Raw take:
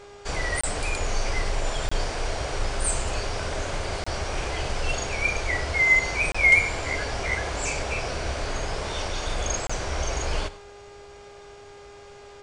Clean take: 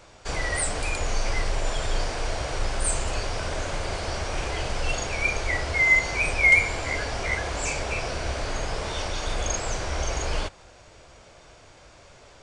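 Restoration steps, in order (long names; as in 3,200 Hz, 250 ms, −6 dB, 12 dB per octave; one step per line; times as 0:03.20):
hum removal 406.3 Hz, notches 13
repair the gap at 0:00.61/0:01.89/0:04.04/0:06.32/0:09.67, 25 ms
echo removal 100 ms −17 dB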